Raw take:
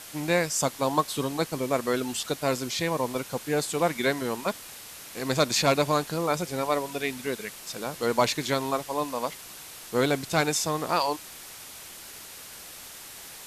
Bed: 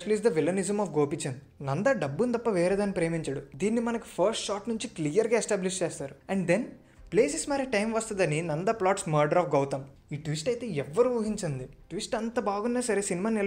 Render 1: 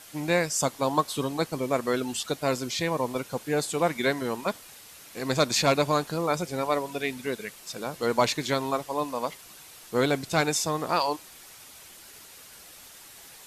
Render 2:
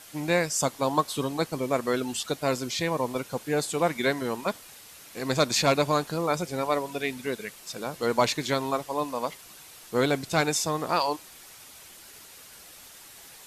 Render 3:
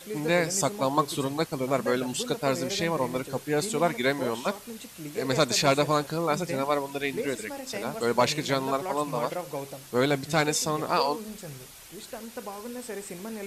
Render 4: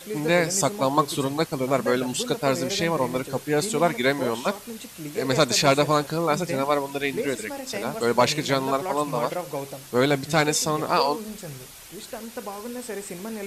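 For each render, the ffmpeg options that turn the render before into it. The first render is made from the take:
-af "afftdn=nr=6:nf=-44"
-af anull
-filter_complex "[1:a]volume=-9.5dB[a];[0:a][a]amix=inputs=2:normalize=0"
-af "volume=3.5dB"

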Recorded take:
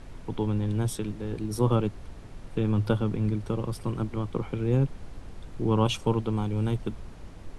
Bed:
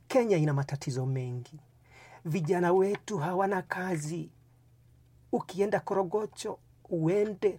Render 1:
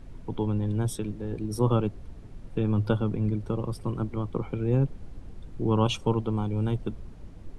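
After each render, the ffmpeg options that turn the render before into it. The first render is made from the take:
-af "afftdn=nr=8:nf=-45"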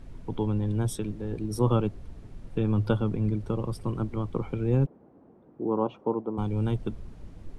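-filter_complex "[0:a]asplit=3[a][b][c];[a]afade=t=out:st=4.85:d=0.02[d];[b]asuperpass=centerf=500:order=4:qfactor=0.62,afade=t=in:st=4.85:d=0.02,afade=t=out:st=6.37:d=0.02[e];[c]afade=t=in:st=6.37:d=0.02[f];[d][e][f]amix=inputs=3:normalize=0"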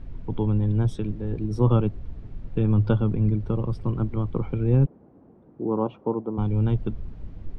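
-af "lowpass=3.9k,lowshelf=f=200:g=7.5"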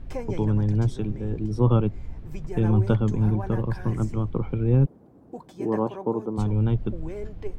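-filter_complex "[1:a]volume=-9dB[a];[0:a][a]amix=inputs=2:normalize=0"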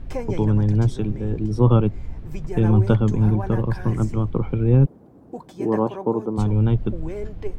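-af "volume=4dB"

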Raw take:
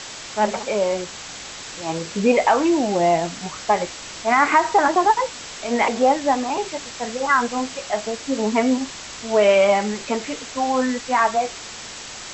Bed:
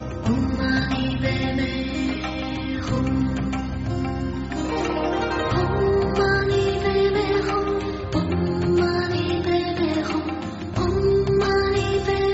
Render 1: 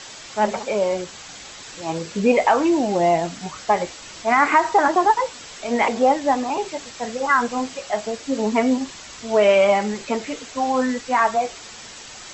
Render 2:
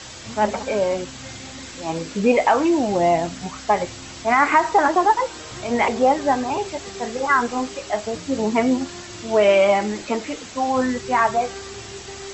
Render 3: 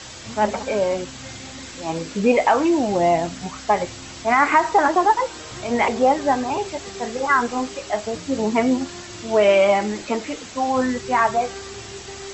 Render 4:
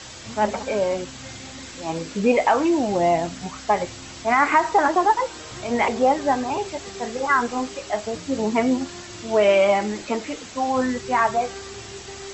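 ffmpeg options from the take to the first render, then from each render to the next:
-af "afftdn=nr=6:nf=-36"
-filter_complex "[1:a]volume=-16.5dB[a];[0:a][a]amix=inputs=2:normalize=0"
-af anull
-af "volume=-1.5dB"

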